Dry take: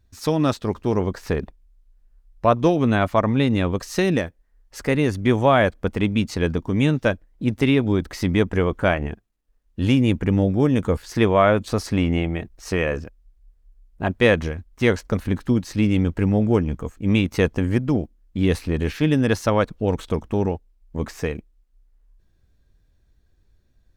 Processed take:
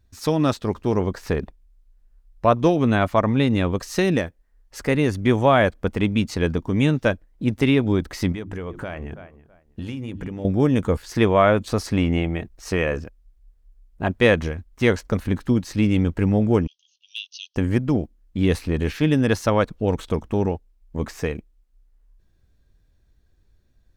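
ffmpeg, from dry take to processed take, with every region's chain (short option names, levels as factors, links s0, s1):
-filter_complex "[0:a]asettb=1/sr,asplit=3[s0][s1][s2];[s0]atrim=end=8.324[s3];[s1]atrim=start=8.32:end=10.45,asetpts=PTS-STARTPTS,afade=t=in:d=0.004:c=qsin,afade=t=out:st=2.126:d=0.004:c=qsin,bandreject=f=50:t=h:w=6,bandreject=f=100:t=h:w=6,bandreject=f=150:t=h:w=6,bandreject=f=200:t=h:w=6,bandreject=f=250:t=h:w=6,bandreject=f=300:t=h:w=6,bandreject=f=350:t=h:w=6,asplit=2[s4][s5];[s5]adelay=327,lowpass=f=2300:p=1,volume=0.0708,asplit=2[s6][s7];[s7]adelay=327,lowpass=f=2300:p=1,volume=0.23[s8];[s4][s6][s8]amix=inputs=3:normalize=0,atrim=end_sample=93933,acompressor=threshold=0.0501:ratio=12:attack=3.2:release=140:knee=1:detection=peak[s9];[s2]atrim=start=10.446[s10];[s3][s9]acrossfade=d=0.004:c1=hsin:c2=qsin[s11];[s11][s10]acrossfade=d=0.004:c1=qsin:c2=hsin,asettb=1/sr,asplit=3[s12][s13][s14];[s12]atrim=end=16.674[s15];[s13]atrim=start=16.67:end=17.56,asetpts=PTS-STARTPTS,afade=t=in:d=0.004:c=qsin,afade=t=out:st=0.886:d=0.004:c=qsin,asuperpass=centerf=4200:order=20:qfactor=1.2,asoftclip=type=hard:threshold=0.0944[s16];[s14]atrim=start=17.556[s17];[s15][s16]acrossfade=d=0.004:c1=hsin:c2=qsin[s18];[s18][s17]acrossfade=d=0.004:c1=qsin:c2=hsin"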